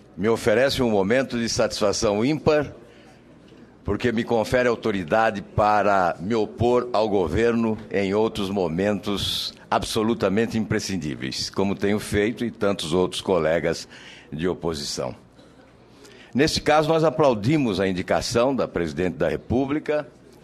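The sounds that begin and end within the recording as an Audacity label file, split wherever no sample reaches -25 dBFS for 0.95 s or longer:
3.880000	15.100000	sound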